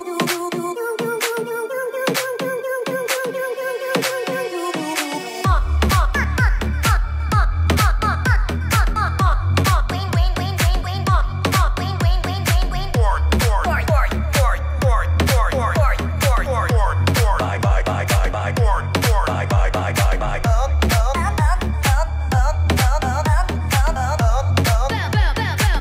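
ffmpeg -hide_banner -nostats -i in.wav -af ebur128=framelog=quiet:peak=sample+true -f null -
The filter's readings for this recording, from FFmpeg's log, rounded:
Integrated loudness:
  I:         -19.2 LUFS
  Threshold: -29.2 LUFS
Loudness range:
  LRA:         3.8 LU
  Threshold: -39.1 LUFS
  LRA low:   -22.0 LUFS
  LRA high:  -18.2 LUFS
Sample peak:
  Peak:       -6.4 dBFS
True peak:
  Peak:       -6.1 dBFS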